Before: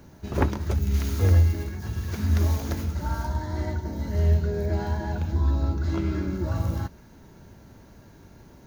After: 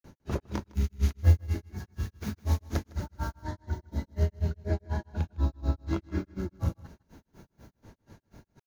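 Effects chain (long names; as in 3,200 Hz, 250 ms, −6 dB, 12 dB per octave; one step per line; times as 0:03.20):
granular cloud 159 ms, grains 4.1 per second, pitch spread up and down by 0 semitones
single-tap delay 157 ms −22.5 dB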